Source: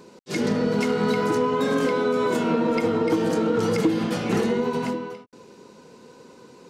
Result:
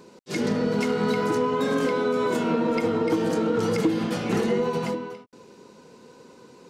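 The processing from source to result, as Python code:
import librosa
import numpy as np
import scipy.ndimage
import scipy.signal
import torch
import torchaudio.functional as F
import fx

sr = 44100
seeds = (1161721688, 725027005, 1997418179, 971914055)

y = fx.comb(x, sr, ms=5.8, depth=0.65, at=(4.47, 4.95))
y = y * 10.0 ** (-1.5 / 20.0)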